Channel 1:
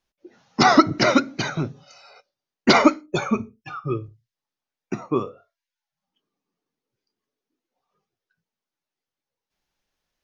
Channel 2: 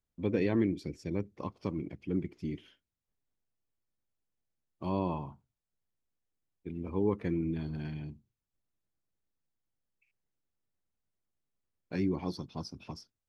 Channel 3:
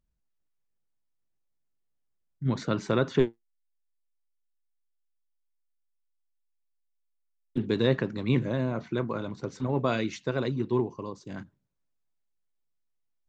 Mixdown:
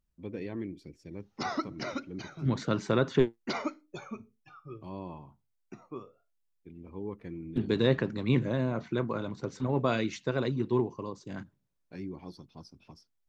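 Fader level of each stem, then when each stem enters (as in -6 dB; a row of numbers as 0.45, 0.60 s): -19.0, -9.0, -1.0 dB; 0.80, 0.00, 0.00 s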